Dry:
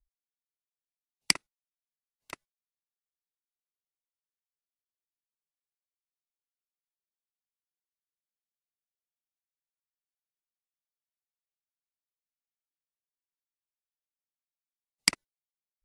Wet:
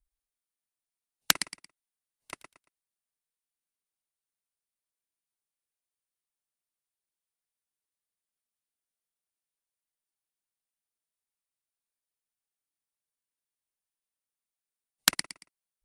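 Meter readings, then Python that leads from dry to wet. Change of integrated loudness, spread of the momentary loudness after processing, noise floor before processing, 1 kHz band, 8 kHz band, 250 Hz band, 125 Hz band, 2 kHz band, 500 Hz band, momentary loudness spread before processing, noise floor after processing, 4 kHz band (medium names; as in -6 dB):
+0.5 dB, 21 LU, under -85 dBFS, +6.0 dB, +2.5 dB, 0.0 dB, -0.5 dB, +1.5 dB, +4.0 dB, 20 LU, under -85 dBFS, +1.5 dB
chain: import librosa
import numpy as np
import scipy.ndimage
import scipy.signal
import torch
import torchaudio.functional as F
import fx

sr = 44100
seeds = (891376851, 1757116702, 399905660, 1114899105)

p1 = fx.peak_eq(x, sr, hz=9300.0, db=11.0, octaves=0.21)
p2 = p1 + fx.echo_feedback(p1, sr, ms=114, feedback_pct=28, wet_db=-10.0, dry=0)
y = fx.doppler_dist(p2, sr, depth_ms=0.35)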